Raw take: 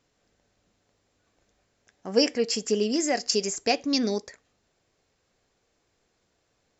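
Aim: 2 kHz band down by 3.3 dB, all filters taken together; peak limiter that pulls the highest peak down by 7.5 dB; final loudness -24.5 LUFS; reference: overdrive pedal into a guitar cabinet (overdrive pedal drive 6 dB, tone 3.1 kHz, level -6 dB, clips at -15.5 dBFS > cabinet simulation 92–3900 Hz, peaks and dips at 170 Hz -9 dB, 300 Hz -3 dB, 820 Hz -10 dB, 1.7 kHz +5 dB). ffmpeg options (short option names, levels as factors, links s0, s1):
-filter_complex "[0:a]equalizer=f=2000:t=o:g=-6,alimiter=limit=0.168:level=0:latency=1,asplit=2[s0][s1];[s1]highpass=f=720:p=1,volume=2,asoftclip=type=tanh:threshold=0.168[s2];[s0][s2]amix=inputs=2:normalize=0,lowpass=f=3100:p=1,volume=0.501,highpass=92,equalizer=f=170:t=q:w=4:g=-9,equalizer=f=300:t=q:w=4:g=-3,equalizer=f=820:t=q:w=4:g=-10,equalizer=f=1700:t=q:w=4:g=5,lowpass=f=3900:w=0.5412,lowpass=f=3900:w=1.3066,volume=2.51"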